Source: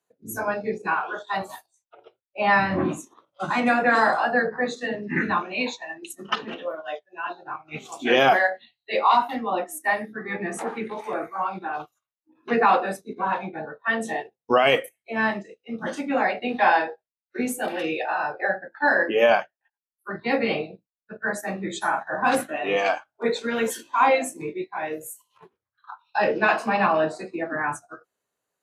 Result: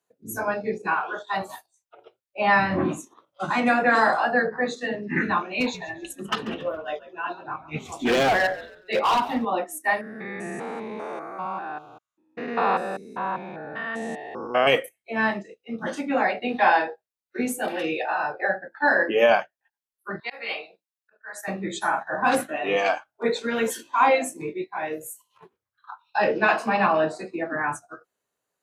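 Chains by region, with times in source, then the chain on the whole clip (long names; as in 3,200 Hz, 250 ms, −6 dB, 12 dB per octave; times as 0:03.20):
0:05.60–0:09.45: low-shelf EQ 250 Hz +10 dB + hard clipping −17.5 dBFS + echo with shifted repeats 139 ms, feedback 33%, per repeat −68 Hz, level −16.5 dB
0:10.01–0:14.67: spectrum averaged block by block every 200 ms + low-pass filter 10,000 Hz
0:20.20–0:21.48: high-pass filter 920 Hz + volume swells 208 ms
whole clip: no processing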